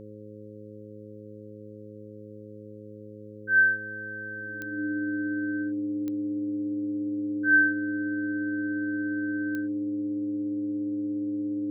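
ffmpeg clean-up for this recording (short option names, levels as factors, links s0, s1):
-af "adeclick=t=4,bandreject=f=105.7:t=h:w=4,bandreject=f=211.4:t=h:w=4,bandreject=f=317.1:t=h:w=4,bandreject=f=422.8:t=h:w=4,bandreject=f=528.5:t=h:w=4,bandreject=f=300:w=30,agate=range=0.0891:threshold=0.0158"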